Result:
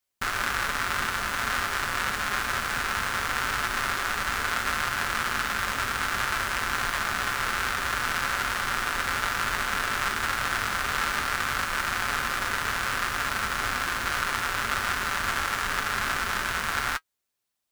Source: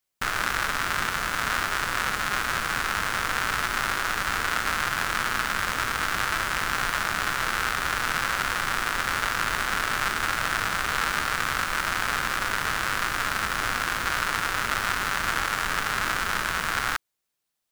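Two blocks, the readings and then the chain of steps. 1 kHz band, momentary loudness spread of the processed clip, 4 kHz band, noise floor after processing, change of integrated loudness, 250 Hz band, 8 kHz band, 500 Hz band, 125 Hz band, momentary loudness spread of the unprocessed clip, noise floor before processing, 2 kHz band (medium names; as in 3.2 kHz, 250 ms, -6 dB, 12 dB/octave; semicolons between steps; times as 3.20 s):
-1.0 dB, 1 LU, -1.5 dB, -78 dBFS, -1.0 dB, -1.5 dB, -1.5 dB, -1.5 dB, -1.0 dB, 1 LU, -81 dBFS, -1.5 dB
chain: comb of notches 160 Hz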